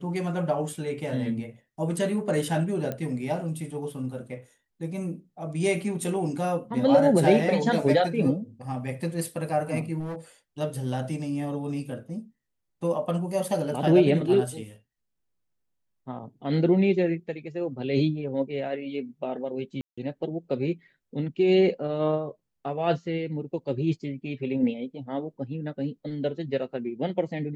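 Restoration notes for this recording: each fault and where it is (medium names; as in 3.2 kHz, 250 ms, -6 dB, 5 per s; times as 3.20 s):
2.92 s: pop -18 dBFS
9.99–10.16 s: clipped -30 dBFS
19.81–19.98 s: dropout 165 ms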